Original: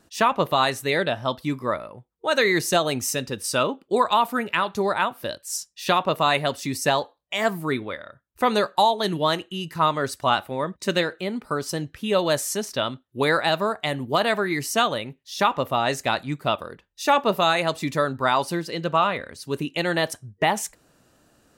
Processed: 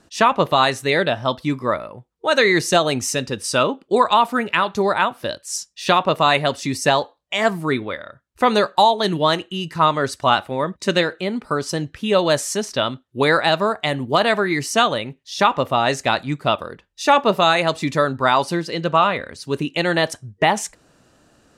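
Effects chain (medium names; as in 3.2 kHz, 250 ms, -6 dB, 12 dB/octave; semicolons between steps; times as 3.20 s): low-pass 8.7 kHz 12 dB/octave; trim +4.5 dB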